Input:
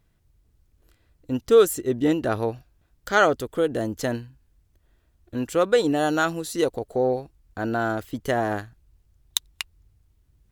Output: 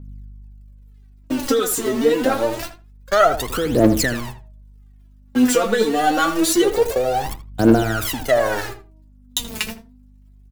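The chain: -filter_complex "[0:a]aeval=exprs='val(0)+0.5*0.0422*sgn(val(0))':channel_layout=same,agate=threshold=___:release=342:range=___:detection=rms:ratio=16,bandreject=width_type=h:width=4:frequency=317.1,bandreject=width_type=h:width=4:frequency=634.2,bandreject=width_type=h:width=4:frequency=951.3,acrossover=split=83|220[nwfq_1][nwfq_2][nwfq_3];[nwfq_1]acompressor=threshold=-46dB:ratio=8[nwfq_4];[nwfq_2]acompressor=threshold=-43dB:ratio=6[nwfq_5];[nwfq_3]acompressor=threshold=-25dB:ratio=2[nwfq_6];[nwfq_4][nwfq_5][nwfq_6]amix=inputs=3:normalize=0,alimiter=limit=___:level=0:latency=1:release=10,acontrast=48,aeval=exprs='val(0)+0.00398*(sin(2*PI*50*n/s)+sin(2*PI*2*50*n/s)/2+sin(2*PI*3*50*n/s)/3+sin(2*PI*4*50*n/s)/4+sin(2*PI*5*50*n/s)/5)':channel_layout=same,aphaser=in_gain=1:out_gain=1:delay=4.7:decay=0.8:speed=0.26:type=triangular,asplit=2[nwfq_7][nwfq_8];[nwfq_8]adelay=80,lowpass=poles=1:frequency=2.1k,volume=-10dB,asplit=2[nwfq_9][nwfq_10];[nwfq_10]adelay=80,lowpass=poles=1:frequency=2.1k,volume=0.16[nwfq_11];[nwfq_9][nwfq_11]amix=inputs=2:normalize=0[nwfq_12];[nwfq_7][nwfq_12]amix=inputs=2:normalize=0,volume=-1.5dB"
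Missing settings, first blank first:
-26dB, -45dB, -9.5dB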